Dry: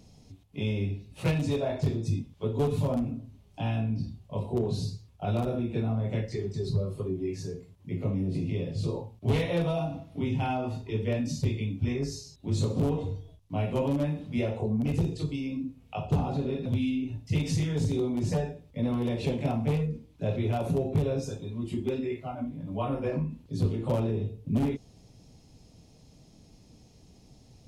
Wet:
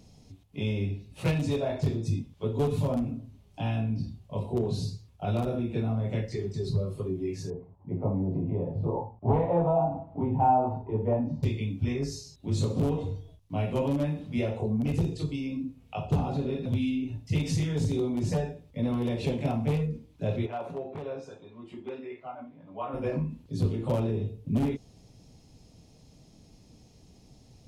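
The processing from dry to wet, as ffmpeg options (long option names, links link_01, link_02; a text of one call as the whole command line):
ffmpeg -i in.wav -filter_complex "[0:a]asettb=1/sr,asplit=3[link_01][link_02][link_03];[link_01]atrim=end=7.504[link_04];[link_02]atrim=start=7.5:end=11.43,asetpts=PTS-STARTPTS,afade=type=in:duration=0.004:curve=qsin,afade=type=out:start_time=3.926:duration=0.004:curve=qsin,lowpass=frequency=860:width_type=q:width=4.3[link_05];[link_03]atrim=start=11.426[link_06];[link_04][link_05]acrossfade=duration=0.004:curve1=hsin:curve2=qsin[link_07];[link_07][link_06]acrossfade=duration=0.004:curve1=qsin:curve2=hsin,asplit=3[link_08][link_09][link_10];[link_08]afade=type=out:start_time=20.45:duration=0.02[link_11];[link_09]bandpass=frequency=1100:width_type=q:width=0.85,afade=type=in:start_time=20.45:duration=0.02,afade=type=out:start_time=22.93:duration=0.02[link_12];[link_10]afade=type=in:start_time=22.93:duration=0.02[link_13];[link_11][link_12][link_13]amix=inputs=3:normalize=0" out.wav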